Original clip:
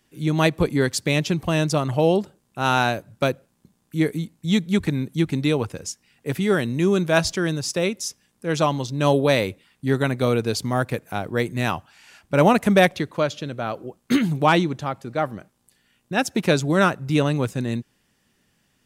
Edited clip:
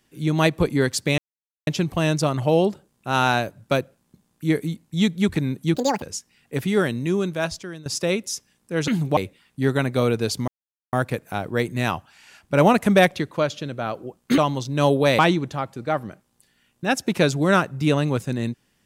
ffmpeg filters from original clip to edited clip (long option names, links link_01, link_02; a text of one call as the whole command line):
ffmpeg -i in.wav -filter_complex "[0:a]asplit=10[link_01][link_02][link_03][link_04][link_05][link_06][link_07][link_08][link_09][link_10];[link_01]atrim=end=1.18,asetpts=PTS-STARTPTS,afade=type=out:start_time=1.176:duration=0.004:curve=hsin,apad=pad_dur=0.49[link_11];[link_02]atrim=start=1.18:end=5.264,asetpts=PTS-STARTPTS,afade=type=in:duration=0.004:curve=hsin[link_12];[link_03]atrim=start=5.26:end=5.75,asetpts=PTS-STARTPTS,asetrate=80703,aresample=44100,atrim=end_sample=11808,asetpts=PTS-STARTPTS[link_13];[link_04]atrim=start=5.746:end=7.59,asetpts=PTS-STARTPTS,afade=type=out:start_time=0.754:duration=1.09:silence=0.125893[link_14];[link_05]atrim=start=7.59:end=8.612,asetpts=PTS-STARTPTS,afade=type=in:duration=0.004:curve=hsin:silence=0.125893[link_15];[link_06]atrim=start=14.178:end=14.472[link_16];[link_07]atrim=start=9.418:end=10.73,asetpts=PTS-STARTPTS,afade=type=out:start_time=1.308:duration=0.004:curve=hsin,apad=pad_dur=0.45[link_17];[link_08]atrim=start=10.73:end=14.182,asetpts=PTS-STARTPTS,afade=type=in:duration=0.004:curve=hsin[link_18];[link_09]atrim=start=8.608:end=9.422[link_19];[link_10]atrim=start=14.468[link_20];[link_11][link_12]concat=n=2:v=0:a=1[link_21];[link_21][link_13]acrossfade=duration=0.004:curve1=hsin:curve2=hsin[link_22];[link_14][link_15]concat=n=2:v=0:a=1[link_23];[link_22][link_23]acrossfade=duration=0.004:curve1=hsin:curve2=hsin[link_24];[link_24][link_16]acrossfade=duration=0.004:curve1=hsin:curve2=hsin[link_25];[link_17][link_18]concat=n=2:v=0:a=1[link_26];[link_25][link_26]acrossfade=duration=0.004:curve1=hsin:curve2=hsin[link_27];[link_27][link_19]acrossfade=duration=0.004:curve1=hsin:curve2=hsin[link_28];[link_28][link_20]acrossfade=duration=0.004:curve1=hsin:curve2=hsin" out.wav